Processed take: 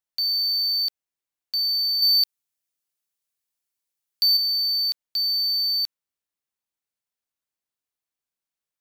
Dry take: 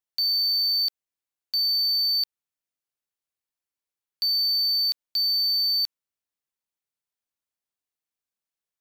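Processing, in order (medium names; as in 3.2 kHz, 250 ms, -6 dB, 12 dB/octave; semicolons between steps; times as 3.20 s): 2.02–4.37 s: treble shelf 3.6 kHz +8.5 dB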